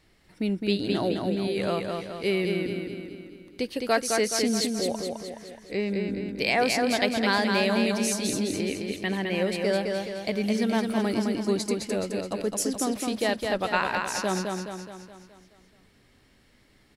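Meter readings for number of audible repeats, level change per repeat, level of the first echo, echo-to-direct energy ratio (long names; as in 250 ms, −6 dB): 6, −5.5 dB, −4.0 dB, −2.5 dB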